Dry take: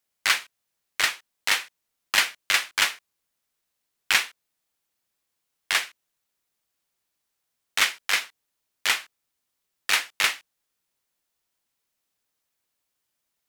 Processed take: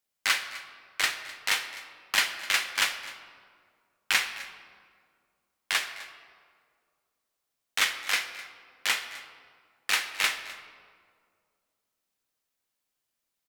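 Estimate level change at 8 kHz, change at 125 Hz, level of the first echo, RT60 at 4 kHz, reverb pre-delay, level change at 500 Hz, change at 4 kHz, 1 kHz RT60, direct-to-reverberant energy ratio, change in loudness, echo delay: -3.5 dB, no reading, -18.5 dB, 1.1 s, 4 ms, -3.0 dB, -3.0 dB, 1.8 s, 6.5 dB, -4.0 dB, 255 ms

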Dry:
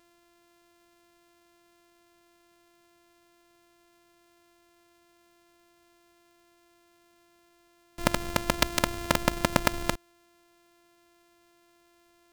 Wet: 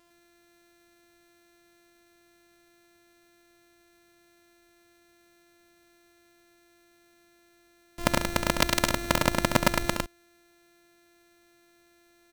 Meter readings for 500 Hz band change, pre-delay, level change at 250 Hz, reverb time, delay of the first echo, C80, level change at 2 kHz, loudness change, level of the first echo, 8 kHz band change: +2.0 dB, no reverb, +2.0 dB, no reverb, 68 ms, no reverb, +2.5 dB, +2.0 dB, -8.0 dB, +2.0 dB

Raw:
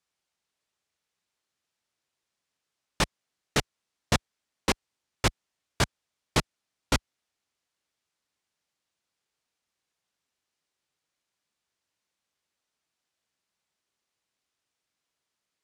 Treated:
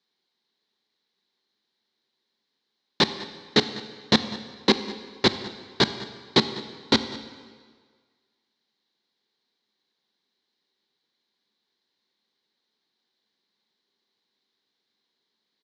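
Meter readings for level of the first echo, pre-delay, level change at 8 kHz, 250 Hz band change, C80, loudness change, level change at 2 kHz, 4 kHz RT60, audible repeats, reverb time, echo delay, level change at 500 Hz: -19.5 dB, 21 ms, -5.0 dB, +9.0 dB, 12.0 dB, +6.0 dB, +3.5 dB, 1.4 s, 1, 1.7 s, 200 ms, +7.5 dB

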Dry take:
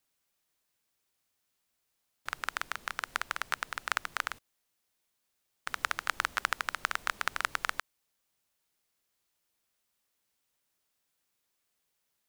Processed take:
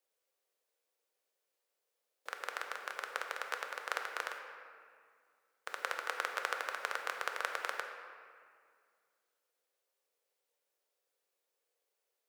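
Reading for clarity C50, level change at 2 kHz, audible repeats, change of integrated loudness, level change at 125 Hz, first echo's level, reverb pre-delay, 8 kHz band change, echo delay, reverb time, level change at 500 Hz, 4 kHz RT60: 5.0 dB, -5.0 dB, no echo, -5.0 dB, under -25 dB, no echo, 3 ms, -7.0 dB, no echo, 2.1 s, +4.5 dB, 1.3 s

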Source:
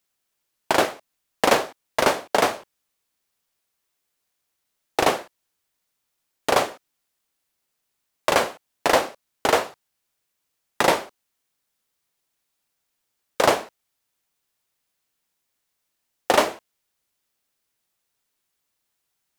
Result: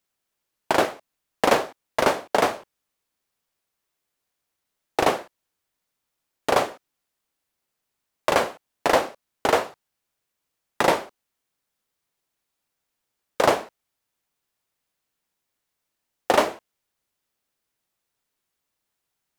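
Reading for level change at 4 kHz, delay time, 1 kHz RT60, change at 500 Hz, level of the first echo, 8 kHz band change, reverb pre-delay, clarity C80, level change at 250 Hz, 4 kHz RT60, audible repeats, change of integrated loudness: -3.5 dB, no echo, no reverb, -0.5 dB, no echo, -4.0 dB, no reverb, no reverb, 0.0 dB, no reverb, no echo, -1.0 dB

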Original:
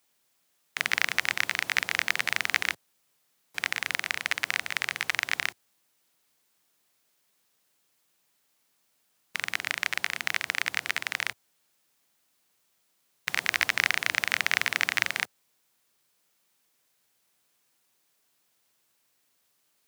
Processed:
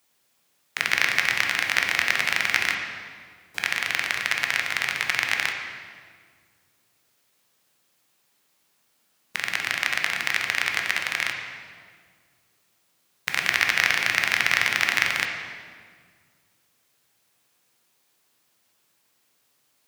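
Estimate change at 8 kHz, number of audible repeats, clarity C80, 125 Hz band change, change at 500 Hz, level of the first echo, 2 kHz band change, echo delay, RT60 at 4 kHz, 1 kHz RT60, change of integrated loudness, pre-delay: +3.5 dB, no echo, 6.0 dB, +6.5 dB, +5.5 dB, no echo, +5.0 dB, no echo, 1.4 s, 1.7 s, +5.0 dB, 12 ms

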